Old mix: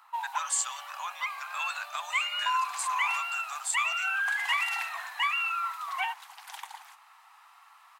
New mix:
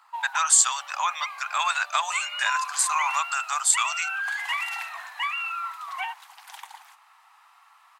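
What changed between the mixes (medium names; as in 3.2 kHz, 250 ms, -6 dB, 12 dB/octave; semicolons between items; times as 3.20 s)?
speech +11.5 dB; first sound: add treble shelf 7.7 kHz -7.5 dB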